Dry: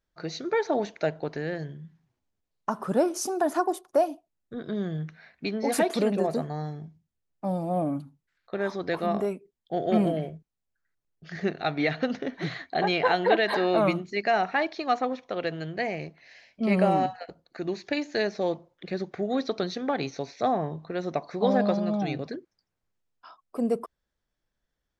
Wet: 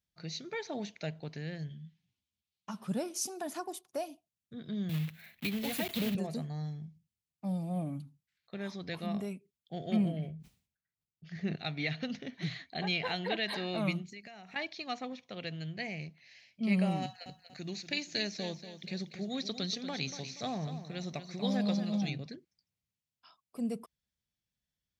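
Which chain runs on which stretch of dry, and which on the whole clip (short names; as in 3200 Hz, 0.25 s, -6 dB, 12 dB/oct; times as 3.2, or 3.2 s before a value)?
1.69–2.87 bell 3300 Hz +9 dB 1.4 oct + ensemble effect
4.89–6.15 block floating point 3-bit + band shelf 6900 Hz -10.5 dB 1.3 oct + three-band squash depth 40%
9.96–11.56 high shelf 2900 Hz -9 dB + sustainer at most 90 dB/s
14.08–14.56 resonant high shelf 6500 Hz +7.5 dB, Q 1.5 + compressor, threshold -36 dBFS
17.02–22.1 high shelf 4500 Hz +10.5 dB + feedback echo 0.238 s, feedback 38%, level -11 dB
whole clip: HPF 74 Hz; band shelf 690 Hz -12 dB 2.9 oct; gain -2.5 dB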